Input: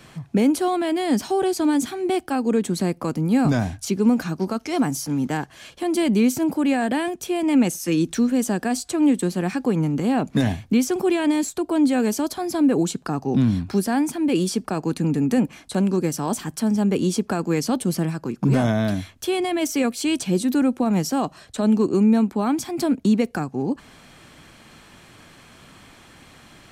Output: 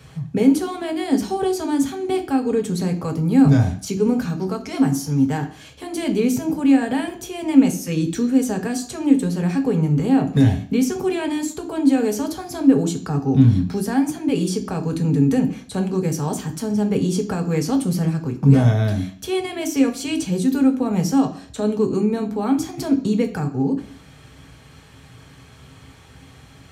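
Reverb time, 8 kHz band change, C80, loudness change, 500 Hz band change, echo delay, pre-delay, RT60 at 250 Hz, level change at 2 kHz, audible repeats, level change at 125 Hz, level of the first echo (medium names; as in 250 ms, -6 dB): 0.55 s, -1.0 dB, 16.0 dB, +2.0 dB, +0.5 dB, no echo, 3 ms, 0.55 s, -1.5 dB, no echo, +6.0 dB, no echo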